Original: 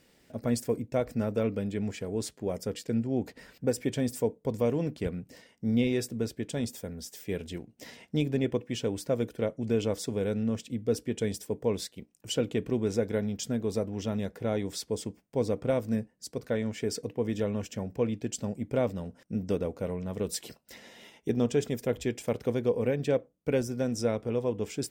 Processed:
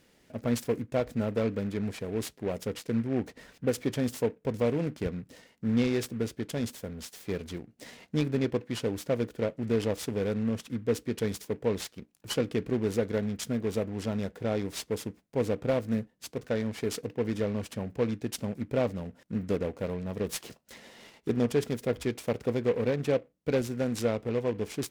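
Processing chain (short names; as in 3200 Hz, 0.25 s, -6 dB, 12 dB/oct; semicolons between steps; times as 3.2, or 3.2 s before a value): noise-modulated delay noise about 1500 Hz, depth 0.035 ms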